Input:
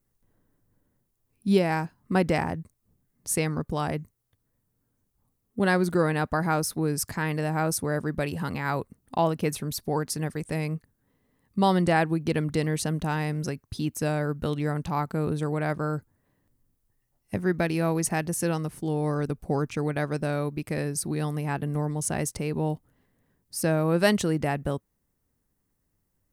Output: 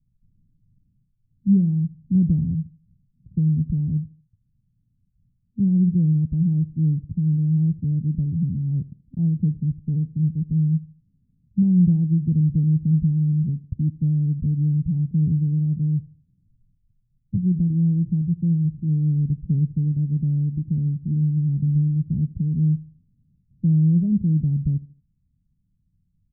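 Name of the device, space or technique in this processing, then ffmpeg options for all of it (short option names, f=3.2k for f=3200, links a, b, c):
the neighbour's flat through the wall: -af "lowpass=f=180:w=0.5412,lowpass=f=180:w=1.3066,equalizer=f=170:t=o:w=0.81:g=4,aecho=1:1:77|154|231:0.1|0.038|0.0144,volume=8.5dB"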